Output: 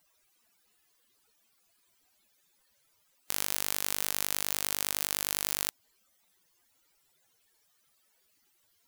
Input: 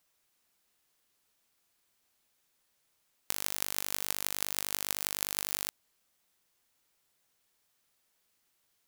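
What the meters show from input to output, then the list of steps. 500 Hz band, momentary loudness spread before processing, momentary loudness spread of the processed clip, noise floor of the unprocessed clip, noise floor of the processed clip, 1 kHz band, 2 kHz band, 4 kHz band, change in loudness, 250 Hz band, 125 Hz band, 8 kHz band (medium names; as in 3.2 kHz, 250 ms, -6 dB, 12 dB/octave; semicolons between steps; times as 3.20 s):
+2.5 dB, 3 LU, 3 LU, -76 dBFS, -71 dBFS, +2.5 dB, +2.5 dB, +2.5 dB, +2.5 dB, +2.5 dB, +2.5 dB, +2.5 dB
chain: spectral contrast enhancement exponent 2.8; peak limiter -8 dBFS, peak gain reduction 6.5 dB; trim +5 dB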